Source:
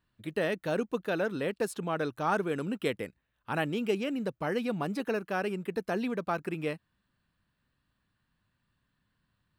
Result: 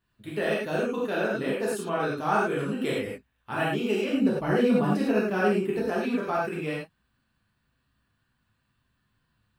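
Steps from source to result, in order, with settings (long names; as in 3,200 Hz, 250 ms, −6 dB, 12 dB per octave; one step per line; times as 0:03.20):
0:04.08–0:05.81: low-shelf EQ 410 Hz +8 dB
reverb whose tail is shaped and stops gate 130 ms flat, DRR −6.5 dB
level −3 dB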